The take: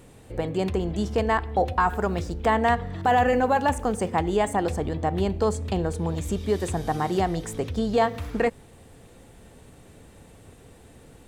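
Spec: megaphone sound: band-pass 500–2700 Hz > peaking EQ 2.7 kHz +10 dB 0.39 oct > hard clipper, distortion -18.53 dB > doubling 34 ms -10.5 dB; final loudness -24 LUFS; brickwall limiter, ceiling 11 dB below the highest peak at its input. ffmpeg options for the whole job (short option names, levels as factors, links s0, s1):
-filter_complex "[0:a]alimiter=limit=0.0794:level=0:latency=1,highpass=500,lowpass=2700,equalizer=f=2700:t=o:w=0.39:g=10,asoftclip=type=hard:threshold=0.0501,asplit=2[s0][s1];[s1]adelay=34,volume=0.299[s2];[s0][s2]amix=inputs=2:normalize=0,volume=3.76"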